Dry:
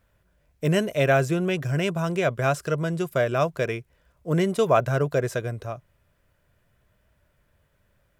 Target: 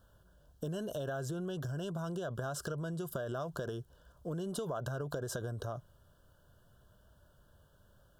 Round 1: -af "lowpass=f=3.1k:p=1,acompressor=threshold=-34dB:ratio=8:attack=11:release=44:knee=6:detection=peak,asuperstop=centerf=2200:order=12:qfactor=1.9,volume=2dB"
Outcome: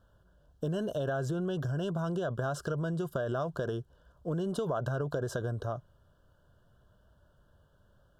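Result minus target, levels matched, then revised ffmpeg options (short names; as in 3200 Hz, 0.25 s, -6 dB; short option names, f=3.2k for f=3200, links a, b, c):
compressor: peak gain reduction -6 dB; 4000 Hz band -4.0 dB
-af "acompressor=threshold=-40.5dB:ratio=8:attack=11:release=44:knee=6:detection=peak,asuperstop=centerf=2200:order=12:qfactor=1.9,volume=2dB"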